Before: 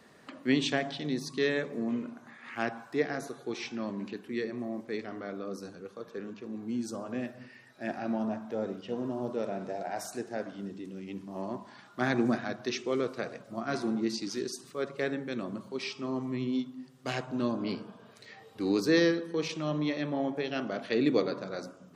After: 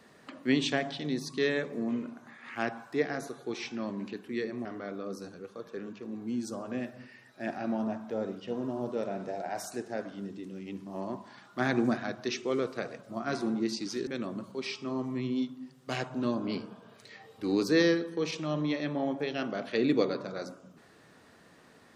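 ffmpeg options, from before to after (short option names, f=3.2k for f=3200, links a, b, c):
-filter_complex "[0:a]asplit=3[a][b][c];[a]atrim=end=4.652[d];[b]atrim=start=5.058:end=14.482[e];[c]atrim=start=15.238[f];[d][e]acrossfade=d=0.004:c1=hsin:c2=hsin[g];[g][f]acrossfade=d=0.004:c1=hsin:c2=hsin"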